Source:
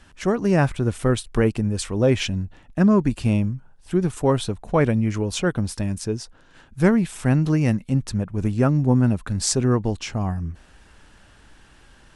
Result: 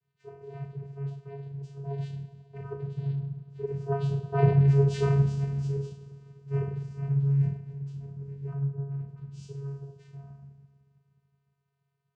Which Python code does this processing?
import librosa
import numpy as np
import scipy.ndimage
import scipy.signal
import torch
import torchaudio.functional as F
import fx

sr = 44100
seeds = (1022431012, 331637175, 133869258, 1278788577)

y = fx.doppler_pass(x, sr, speed_mps=31, closest_m=12.0, pass_at_s=4.78)
y = fx.low_shelf(y, sr, hz=180.0, db=4.0)
y = fx.rev_double_slope(y, sr, seeds[0], early_s=0.52, late_s=2.6, knee_db=-18, drr_db=-8.0)
y = fx.vocoder(y, sr, bands=8, carrier='square', carrier_hz=139.0)
y = F.gain(torch.from_numpy(y), -5.0).numpy()